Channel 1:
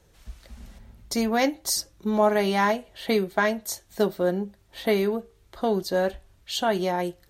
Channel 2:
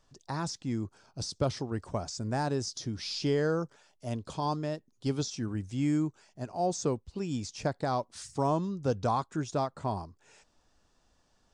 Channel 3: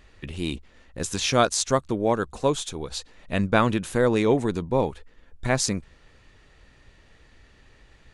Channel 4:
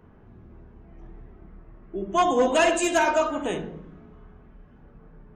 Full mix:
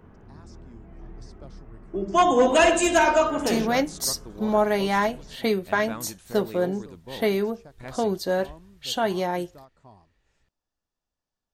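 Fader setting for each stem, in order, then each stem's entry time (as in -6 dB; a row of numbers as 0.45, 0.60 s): -0.5, -18.5, -17.0, +2.5 dB; 2.35, 0.00, 2.35, 0.00 s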